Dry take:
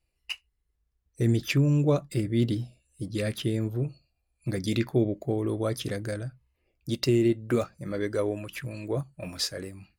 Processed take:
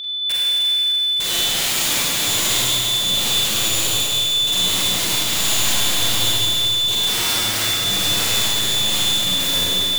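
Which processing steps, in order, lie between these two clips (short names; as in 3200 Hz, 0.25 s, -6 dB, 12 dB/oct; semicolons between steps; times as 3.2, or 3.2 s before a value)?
whine 3500 Hz -29 dBFS; wrapped overs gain 24.5 dB; Schroeder reverb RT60 3.8 s, combs from 33 ms, DRR -8 dB; gain +2 dB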